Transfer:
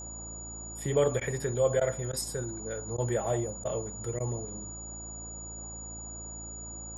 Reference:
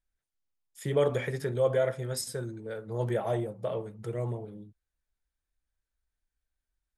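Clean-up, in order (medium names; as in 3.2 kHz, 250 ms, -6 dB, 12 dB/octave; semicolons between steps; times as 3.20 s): de-hum 55.8 Hz, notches 6; band-stop 6.9 kHz, Q 30; interpolate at 1.20/1.80/2.12/2.97/3.64/4.19 s, 11 ms; noise print and reduce 30 dB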